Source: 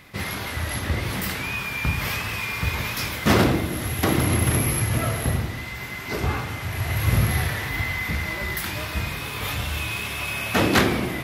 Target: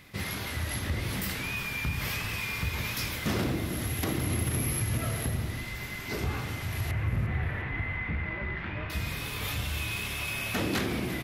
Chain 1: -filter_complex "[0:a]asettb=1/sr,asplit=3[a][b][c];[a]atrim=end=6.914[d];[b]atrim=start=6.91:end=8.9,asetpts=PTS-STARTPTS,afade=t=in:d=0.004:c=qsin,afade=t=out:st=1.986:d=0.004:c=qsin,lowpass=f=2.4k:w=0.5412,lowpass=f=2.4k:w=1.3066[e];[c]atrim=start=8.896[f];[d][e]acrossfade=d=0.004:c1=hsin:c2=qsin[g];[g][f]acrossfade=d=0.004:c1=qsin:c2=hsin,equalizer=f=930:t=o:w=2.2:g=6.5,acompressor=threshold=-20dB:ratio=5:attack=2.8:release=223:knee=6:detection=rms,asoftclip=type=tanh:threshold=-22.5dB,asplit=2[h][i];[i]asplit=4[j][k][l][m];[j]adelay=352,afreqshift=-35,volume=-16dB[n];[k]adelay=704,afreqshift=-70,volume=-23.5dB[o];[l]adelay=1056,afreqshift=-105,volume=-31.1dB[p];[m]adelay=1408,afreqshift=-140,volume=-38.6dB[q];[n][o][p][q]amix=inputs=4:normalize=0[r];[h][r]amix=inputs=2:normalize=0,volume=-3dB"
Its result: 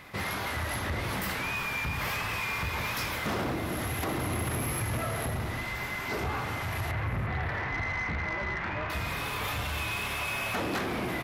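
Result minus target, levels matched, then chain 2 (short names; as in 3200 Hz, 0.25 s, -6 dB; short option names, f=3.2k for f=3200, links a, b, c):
soft clip: distortion +18 dB; 1000 Hz band +6.5 dB
-filter_complex "[0:a]asettb=1/sr,asplit=3[a][b][c];[a]atrim=end=6.914[d];[b]atrim=start=6.91:end=8.9,asetpts=PTS-STARTPTS,afade=t=in:d=0.004:c=qsin,afade=t=out:st=1.986:d=0.004:c=qsin,lowpass=f=2.4k:w=0.5412,lowpass=f=2.4k:w=1.3066[e];[c]atrim=start=8.896[f];[d][e]acrossfade=d=0.004:c1=hsin:c2=qsin[g];[g][f]acrossfade=d=0.004:c1=qsin:c2=hsin,equalizer=f=930:t=o:w=2.2:g=-4.5,acompressor=threshold=-20dB:ratio=5:attack=2.8:release=223:knee=6:detection=rms,asoftclip=type=tanh:threshold=-11.5dB,asplit=2[h][i];[i]asplit=4[j][k][l][m];[j]adelay=352,afreqshift=-35,volume=-16dB[n];[k]adelay=704,afreqshift=-70,volume=-23.5dB[o];[l]adelay=1056,afreqshift=-105,volume=-31.1dB[p];[m]adelay=1408,afreqshift=-140,volume=-38.6dB[q];[n][o][p][q]amix=inputs=4:normalize=0[r];[h][r]amix=inputs=2:normalize=0,volume=-3dB"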